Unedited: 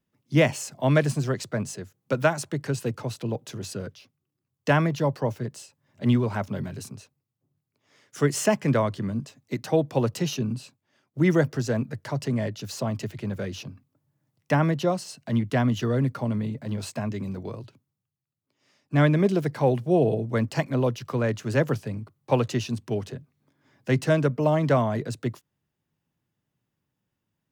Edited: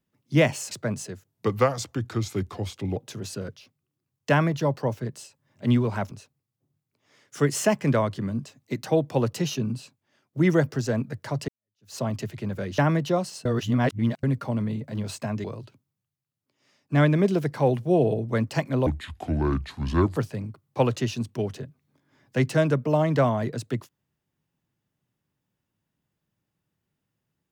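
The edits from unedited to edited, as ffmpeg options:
-filter_complex "[0:a]asplit=12[a][b][c][d][e][f][g][h][i][j][k][l];[a]atrim=end=0.712[m];[b]atrim=start=1.398:end=1.974[n];[c]atrim=start=1.97:end=3.35,asetpts=PTS-STARTPTS,asetrate=36162,aresample=44100,atrim=end_sample=74217,asetpts=PTS-STARTPTS[o];[d]atrim=start=3.346:end=6.502[p];[e]atrim=start=6.918:end=12.29,asetpts=PTS-STARTPTS,afade=t=out:st=5.368:d=0.004:c=hsin[q];[f]atrim=start=12.29:end=13.592,asetpts=PTS-STARTPTS,afade=t=in:d=0.47:c=exp[r];[g]atrim=start=14.518:end=15.192[s];[h]atrim=start=15.188:end=15.972,asetpts=PTS-STARTPTS,areverse[t];[i]atrim=start=15.968:end=17.182[u];[j]atrim=start=17.448:end=20.874[v];[k]atrim=start=20.87:end=21.69,asetpts=PTS-STARTPTS,asetrate=27783,aresample=44100[w];[l]atrim=start=21.686[x];[m][n]acrossfade=d=0.004:c1=hsin:c2=hsin[y];[y][o]acrossfade=d=0.004:c1=hsin:c2=hsin[z];[z][p]acrossfade=d=0.004:c1=hsin:c2=hsin[aa];[q][r]concat=n=2:v=0:a=1[ab];[aa][ab]acrossfade=d=0.004:c1=hsin:c2=hsin[ac];[ac][s]acrossfade=d=0.004:c1=hsin:c2=hsin[ad];[ad][t]acrossfade=d=0.004:c1=hsin:c2=hsin[ae];[ae][u]acrossfade=d=0.004:c1=hsin:c2=hsin[af];[af][v]acrossfade=d=0.004:c1=hsin:c2=hsin[ag];[ag][w]acrossfade=d=0.004:c1=hsin:c2=hsin[ah];[ah][x]acrossfade=d=0.004:c1=hsin:c2=hsin"

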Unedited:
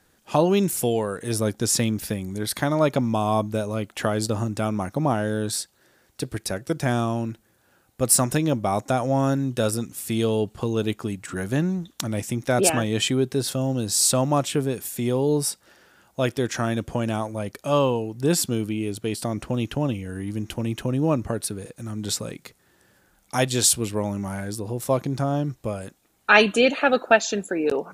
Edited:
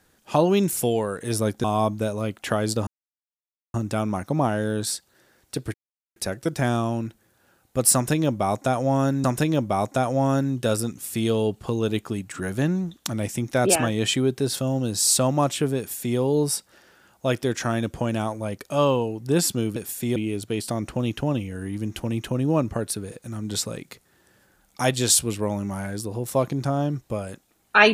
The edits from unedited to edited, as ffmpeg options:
-filter_complex "[0:a]asplit=7[a][b][c][d][e][f][g];[a]atrim=end=1.642[h];[b]atrim=start=3.168:end=4.4,asetpts=PTS-STARTPTS,afade=t=out:st=1.228:d=0.004:c=hsin,apad=pad_dur=0.87[i];[c]atrim=start=4.4:end=6.4,asetpts=PTS-STARTPTS,afade=t=in:d=0.004:c=hsin,afade=t=out:st=1.996:d=0.004:c=hsin,apad=pad_dur=0.42[j];[d]atrim=start=6.4:end=9.482,asetpts=PTS-STARTPTS,afade=t=in:d=0.004:c=hsin[k];[e]atrim=start=8.178:end=18.702[l];[f]atrim=start=14.718:end=15.122[m];[g]atrim=start=18.698[n];[i][j][k]concat=n=3:v=0:a=1[o];[h][o]acrossfade=d=0.004:c1=hsin:c2=hsin[p];[p][l]acrossfade=d=0.004:c1=hsin:c2=hsin[q];[q][m]acrossfade=d=0.004:c1=hsin:c2=hsin[r];[r][n]acrossfade=d=0.004:c1=hsin:c2=hsin"

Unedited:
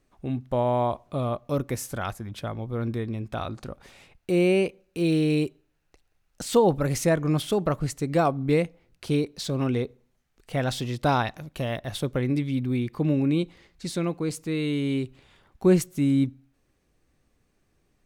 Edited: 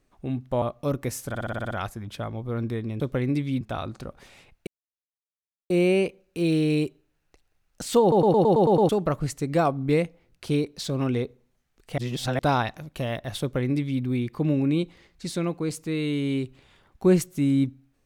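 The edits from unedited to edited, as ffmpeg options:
-filter_complex "[0:a]asplit=22[a][b][c][d][e][f][g][h][i][j][k][l][m][n][o][p][q][r][s][t][u][v];[a]atrim=end=0.622[w];[b]atrim=start=1.278:end=2.012[x];[c]atrim=start=1.948:end=2.012[y];[d]atrim=start=1.948:end=2.012[z];[e]atrim=start=1.948:end=2.012[aa];[f]atrim=start=1.948:end=2.012[ab];[g]atrim=start=1.948:end=2.012[ac];[h]atrim=start=1.948:end=2.012[ad];[i]atrim=start=1.948:end=3.242[ae];[j]atrim=start=12.008:end=12.622[af];[k]atrim=start=3.238:end=4.3,asetpts=PTS-STARTPTS,afade=t=out:st=1.058:d=0.004:c=hsin,apad=pad_dur=1.03[ag];[l]atrim=start=4.3:end=6.722,asetpts=PTS-STARTPTS,afade=t=in:d=0.004:c=hsin[ah];[m]atrim=start=6.608:end=6.722[ai];[n]atrim=start=6.608:end=6.722[aj];[o]atrim=start=6.608:end=6.722[ak];[p]atrim=start=6.608:end=6.722[al];[q]atrim=start=6.608:end=6.722[am];[r]atrim=start=6.608:end=6.722[an];[s]atrim=start=6.608:end=6.722[ao];[t]atrim=start=7.488:end=10.582[ap];[u]atrim=start=10.578:end=10.992,asetpts=PTS-STARTPTS,areverse[aq];[v]atrim=start=10.988[ar];[w][x]acrossfade=d=0.004:c1=hsin:c2=hsin[as];[as][y]acrossfade=d=0.004:c1=hsin:c2=hsin[at];[at][z]acrossfade=d=0.004:c1=hsin:c2=hsin[au];[au][aa]acrossfade=d=0.004:c1=hsin:c2=hsin[av];[av][ab]acrossfade=d=0.004:c1=hsin:c2=hsin[aw];[aw][ac]acrossfade=d=0.004:c1=hsin:c2=hsin[ax];[ax][ad]acrossfade=d=0.004:c1=hsin:c2=hsin[ay];[ay][ae]acrossfade=d=0.004:c1=hsin:c2=hsin[az];[az][af]acrossfade=d=0.004:c1=hsin:c2=hsin[ba];[ag][ah]concat=n=2:v=0:a=1[bb];[ba][bb]acrossfade=d=0.004:c1=hsin:c2=hsin[bc];[bc][ai]acrossfade=d=0.004:c1=hsin:c2=hsin[bd];[bd][aj]acrossfade=d=0.004:c1=hsin:c2=hsin[be];[be][ak]acrossfade=d=0.004:c1=hsin:c2=hsin[bf];[bf][al]acrossfade=d=0.004:c1=hsin:c2=hsin[bg];[bg][am]acrossfade=d=0.004:c1=hsin:c2=hsin[bh];[bh][an]acrossfade=d=0.004:c1=hsin:c2=hsin[bi];[bi][ao]acrossfade=d=0.004:c1=hsin:c2=hsin[bj];[bj][ap]acrossfade=d=0.004:c1=hsin:c2=hsin[bk];[bk][aq]acrossfade=d=0.004:c1=hsin:c2=hsin[bl];[bl][ar]acrossfade=d=0.004:c1=hsin:c2=hsin"

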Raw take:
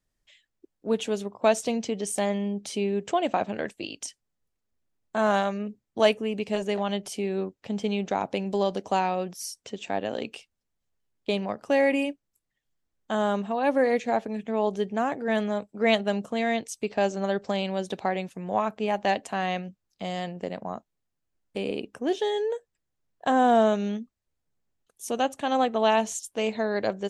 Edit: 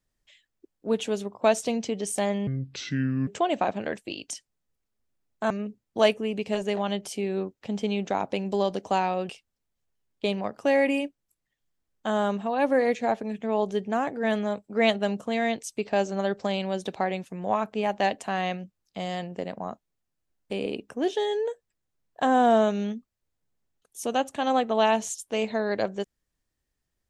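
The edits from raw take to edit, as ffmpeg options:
-filter_complex "[0:a]asplit=5[a][b][c][d][e];[a]atrim=end=2.474[f];[b]atrim=start=2.47:end=3,asetpts=PTS-STARTPTS,asetrate=29106,aresample=44100[g];[c]atrim=start=2.996:end=5.232[h];[d]atrim=start=5.508:end=9.302[i];[e]atrim=start=10.338[j];[f][g]acrossfade=d=0.004:c1=hsin:c2=hsin[k];[k][h]acrossfade=d=0.004:c1=hsin:c2=hsin[l];[l][i]acrossfade=d=0.004:c1=hsin:c2=hsin[m];[m][j]acrossfade=d=0.004:c1=hsin:c2=hsin"

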